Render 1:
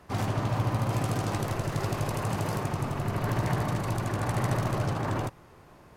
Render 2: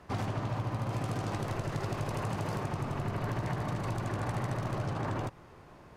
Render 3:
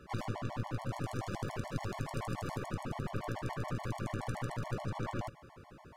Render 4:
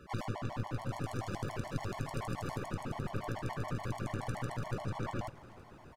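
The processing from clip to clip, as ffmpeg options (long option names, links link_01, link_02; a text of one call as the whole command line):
ffmpeg -i in.wav -af "acompressor=threshold=-30dB:ratio=6,highshelf=frequency=10000:gain=-12" out.wav
ffmpeg -i in.wav -af "aeval=exprs='clip(val(0),-1,0.0075)':channel_layout=same,afftfilt=real='re*gt(sin(2*PI*7*pts/sr)*(1-2*mod(floor(b*sr/1024/580),2)),0)':imag='im*gt(sin(2*PI*7*pts/sr)*(1-2*mod(floor(b*sr/1024/580),2)),0)':win_size=1024:overlap=0.75,volume=1.5dB" out.wav
ffmpeg -i in.wav -af "aecho=1:1:325|650|975|1300|1625:0.0944|0.0548|0.0318|0.0184|0.0107" out.wav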